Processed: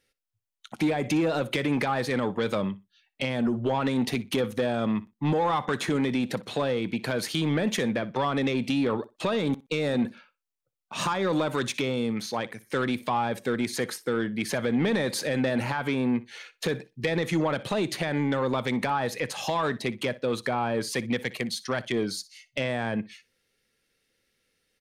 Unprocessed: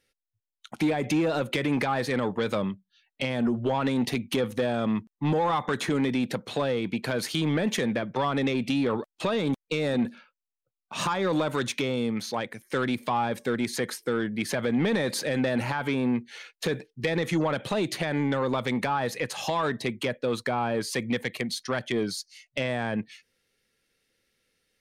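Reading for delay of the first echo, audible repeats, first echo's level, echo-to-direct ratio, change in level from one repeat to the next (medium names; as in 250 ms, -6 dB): 61 ms, 2, -19.0 dB, -19.0 dB, -16.0 dB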